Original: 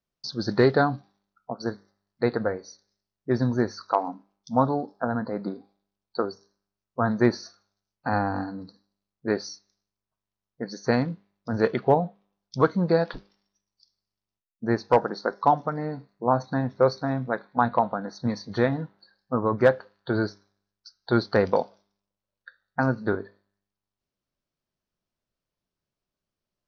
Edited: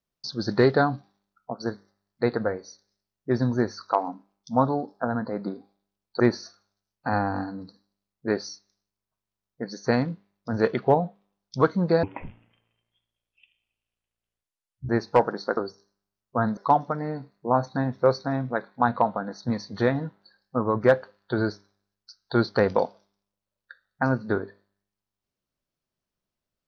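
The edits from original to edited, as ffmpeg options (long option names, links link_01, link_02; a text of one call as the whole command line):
ffmpeg -i in.wav -filter_complex "[0:a]asplit=6[link_01][link_02][link_03][link_04][link_05][link_06];[link_01]atrim=end=6.202[link_07];[link_02]atrim=start=7.198:end=13.034[link_08];[link_03]atrim=start=13.03:end=14.66,asetpts=PTS-STARTPTS,asetrate=25137,aresample=44100[link_09];[link_04]atrim=start=14.656:end=15.342[link_10];[link_05]atrim=start=6.198:end=7.202[link_11];[link_06]atrim=start=15.338[link_12];[link_07][link_08]acrossfade=duration=0.004:curve1=hsin:curve2=hsin[link_13];[link_13][link_09]acrossfade=duration=0.004:curve1=hsin:curve2=hsin[link_14];[link_14][link_10]acrossfade=duration=0.004:curve1=hsin:curve2=hsin[link_15];[link_15][link_11]acrossfade=duration=0.004:curve1=hsin:curve2=hsin[link_16];[link_16][link_12]acrossfade=duration=0.004:curve1=hsin:curve2=hsin" out.wav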